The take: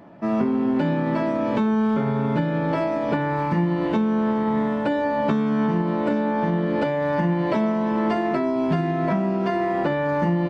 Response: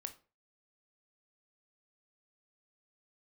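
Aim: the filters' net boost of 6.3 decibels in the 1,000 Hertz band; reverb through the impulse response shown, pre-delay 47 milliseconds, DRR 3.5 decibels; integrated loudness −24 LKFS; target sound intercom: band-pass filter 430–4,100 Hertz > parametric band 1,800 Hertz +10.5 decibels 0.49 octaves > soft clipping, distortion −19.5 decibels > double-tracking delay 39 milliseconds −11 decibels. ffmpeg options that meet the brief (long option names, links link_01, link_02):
-filter_complex "[0:a]equalizer=frequency=1000:width_type=o:gain=7,asplit=2[link_01][link_02];[1:a]atrim=start_sample=2205,adelay=47[link_03];[link_02][link_03]afir=irnorm=-1:irlink=0,volume=0dB[link_04];[link_01][link_04]amix=inputs=2:normalize=0,highpass=430,lowpass=4100,equalizer=frequency=1800:width_type=o:width=0.49:gain=10.5,asoftclip=threshold=-13dB,asplit=2[link_05][link_06];[link_06]adelay=39,volume=-11dB[link_07];[link_05][link_07]amix=inputs=2:normalize=0,volume=-3dB"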